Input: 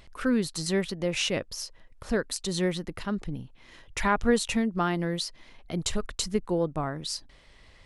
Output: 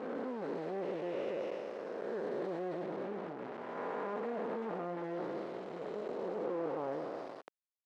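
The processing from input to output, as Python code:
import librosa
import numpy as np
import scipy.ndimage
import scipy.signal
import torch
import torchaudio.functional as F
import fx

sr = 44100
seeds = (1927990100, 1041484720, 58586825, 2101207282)

p1 = fx.spec_blur(x, sr, span_ms=658.0)
p2 = fx.level_steps(p1, sr, step_db=10)
p3 = p1 + F.gain(torch.from_numpy(p2), -0.5).numpy()
p4 = fx.quant_companded(p3, sr, bits=2)
p5 = fx.ladder_bandpass(p4, sr, hz=590.0, resonance_pct=25)
p6 = fx.sustainer(p5, sr, db_per_s=35.0)
y = F.gain(torch.from_numpy(p6), 4.0).numpy()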